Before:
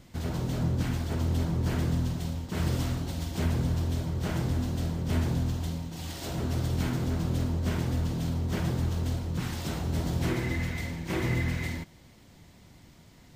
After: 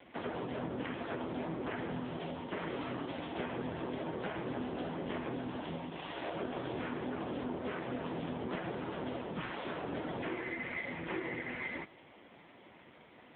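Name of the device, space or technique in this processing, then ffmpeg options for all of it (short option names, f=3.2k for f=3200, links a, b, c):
voicemail: -af "highpass=390,lowpass=2.9k,acompressor=threshold=-41dB:ratio=8,volume=9dB" -ar 8000 -c:a libopencore_amrnb -b:a 5900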